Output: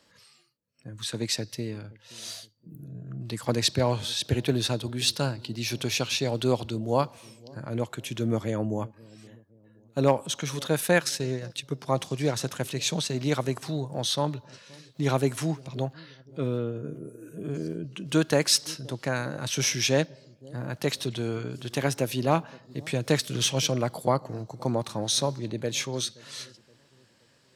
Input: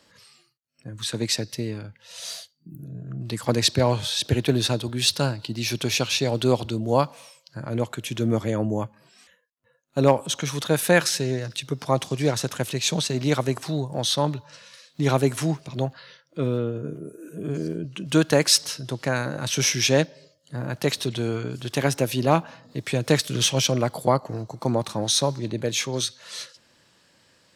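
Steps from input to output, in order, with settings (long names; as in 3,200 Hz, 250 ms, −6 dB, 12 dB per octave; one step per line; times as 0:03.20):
delay with a low-pass on its return 523 ms, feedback 43%, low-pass 480 Hz, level −21 dB
0:10.78–0:11.88: transient designer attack 0 dB, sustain −6 dB
level −4 dB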